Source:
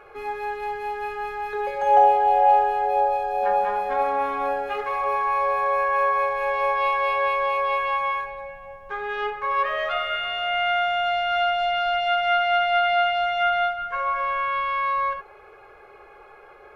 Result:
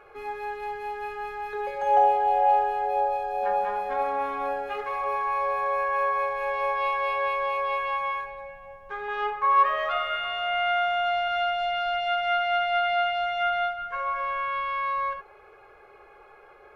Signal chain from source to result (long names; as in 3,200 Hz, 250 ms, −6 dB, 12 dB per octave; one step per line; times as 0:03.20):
0:09.08–0:11.28: parametric band 1,000 Hz +13 dB 0.41 octaves
level −4 dB